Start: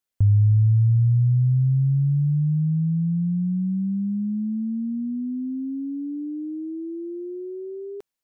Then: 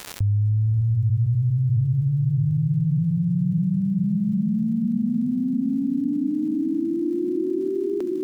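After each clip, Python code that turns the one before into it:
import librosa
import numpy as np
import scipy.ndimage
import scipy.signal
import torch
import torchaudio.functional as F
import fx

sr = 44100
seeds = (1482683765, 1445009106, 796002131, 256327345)

y = fx.dmg_crackle(x, sr, seeds[0], per_s=220.0, level_db=-51.0)
y = fx.echo_diffused(y, sr, ms=609, feedback_pct=46, wet_db=-4.0)
y = fx.env_flatten(y, sr, amount_pct=70)
y = y * 10.0 ** (-7.0 / 20.0)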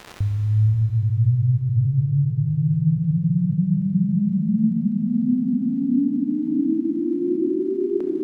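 y = fx.lowpass(x, sr, hz=2000.0, slope=6)
y = fx.rev_schroeder(y, sr, rt60_s=3.7, comb_ms=25, drr_db=3.0)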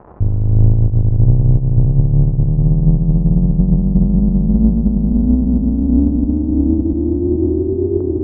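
y = fx.octave_divider(x, sr, octaves=2, level_db=0.0)
y = scipy.signal.sosfilt(scipy.signal.butter(4, 1000.0, 'lowpass', fs=sr, output='sos'), y)
y = y * 10.0 ** (5.0 / 20.0)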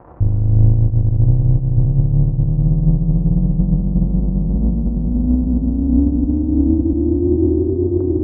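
y = fx.notch(x, sr, hz=400.0, q=12.0)
y = fx.rider(y, sr, range_db=3, speed_s=2.0)
y = fx.notch_comb(y, sr, f0_hz=210.0)
y = y * 10.0 ** (-1.0 / 20.0)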